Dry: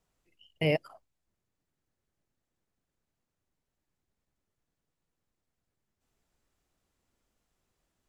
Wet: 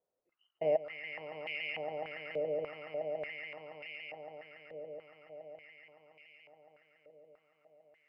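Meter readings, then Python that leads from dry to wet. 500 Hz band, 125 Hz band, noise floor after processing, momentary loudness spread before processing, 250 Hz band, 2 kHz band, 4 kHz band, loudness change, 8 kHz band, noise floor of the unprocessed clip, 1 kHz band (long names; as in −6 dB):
+3.0 dB, −16.0 dB, −84 dBFS, 3 LU, −10.0 dB, +2.0 dB, −2.0 dB, −9.0 dB, can't be measured, below −85 dBFS, +5.0 dB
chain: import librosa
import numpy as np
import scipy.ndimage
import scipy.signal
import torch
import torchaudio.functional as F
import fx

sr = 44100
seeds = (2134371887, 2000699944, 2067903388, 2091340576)

p1 = x + fx.echo_swell(x, sr, ms=141, loudest=8, wet_db=-5.5, dry=0)
p2 = fx.filter_held_bandpass(p1, sr, hz=3.4, low_hz=530.0, high_hz=2400.0)
y = p2 * librosa.db_to_amplitude(3.5)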